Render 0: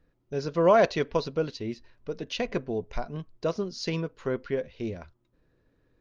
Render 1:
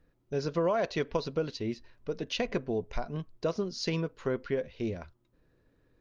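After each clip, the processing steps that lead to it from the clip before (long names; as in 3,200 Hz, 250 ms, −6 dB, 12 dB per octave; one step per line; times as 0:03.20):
downward compressor 6 to 1, threshold −25 dBFS, peak gain reduction 10 dB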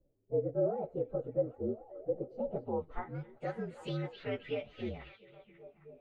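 partials spread apart or drawn together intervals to 119%
low-pass filter sweep 500 Hz → 2,700 Hz, 0:02.38–0:03.34
echo through a band-pass that steps 269 ms, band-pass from 3,600 Hz, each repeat −0.7 octaves, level −6 dB
level −4.5 dB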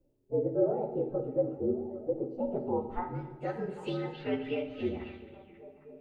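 hollow resonant body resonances 330/890/2,700 Hz, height 8 dB, ringing for 25 ms
on a send at −5 dB: convolution reverb RT60 1.1 s, pre-delay 4 ms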